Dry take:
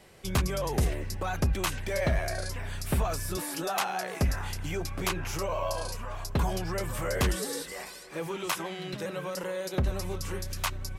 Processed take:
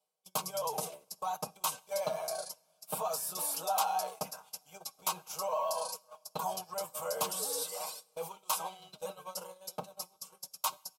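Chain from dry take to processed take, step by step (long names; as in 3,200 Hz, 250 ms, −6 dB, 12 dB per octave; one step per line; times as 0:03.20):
reversed playback
upward compression, threshold −28 dBFS
reversed playback
high-pass filter 240 Hz 24 dB per octave
high-shelf EQ 11,000 Hz +9 dB
comb filter 6.4 ms, depth 67%
noise gate −33 dBFS, range −31 dB
on a send at −20.5 dB: convolution reverb, pre-delay 3 ms
on the sum: dynamic equaliser 970 Hz, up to +4 dB, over −42 dBFS, Q 2.2
phaser with its sweep stopped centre 770 Hz, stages 4
level −3.5 dB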